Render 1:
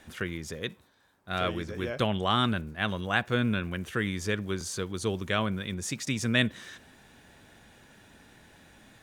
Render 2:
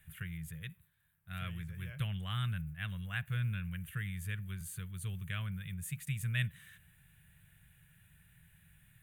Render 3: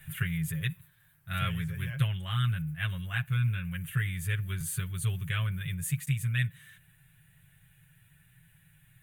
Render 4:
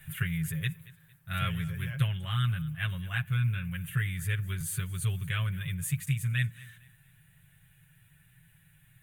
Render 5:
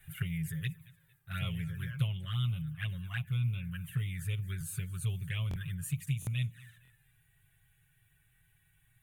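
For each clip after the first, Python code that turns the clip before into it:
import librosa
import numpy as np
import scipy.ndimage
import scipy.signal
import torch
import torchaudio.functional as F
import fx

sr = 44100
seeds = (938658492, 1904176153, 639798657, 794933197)

y1 = fx.curve_eq(x, sr, hz=(110.0, 160.0, 250.0, 890.0, 1700.0, 2800.0, 5500.0, 8300.0, 12000.0), db=(0, 3, -28, -22, -8, -7, -25, -5, 6))
y1 = y1 * librosa.db_to_amplitude(-2.5)
y2 = fx.rider(y1, sr, range_db=10, speed_s=0.5)
y2 = y2 + 0.82 * np.pad(y2, (int(7.4 * sr / 1000.0), 0))[:len(y2)]
y2 = y2 * librosa.db_to_amplitude(5.0)
y3 = fx.echo_feedback(y2, sr, ms=227, feedback_pct=34, wet_db=-20.5)
y4 = fx.env_flanger(y3, sr, rest_ms=2.8, full_db=-26.5)
y4 = fx.buffer_glitch(y4, sr, at_s=(5.49, 6.2, 6.83, 8.34), block=1024, repeats=2)
y4 = y4 * librosa.db_to_amplitude(-3.5)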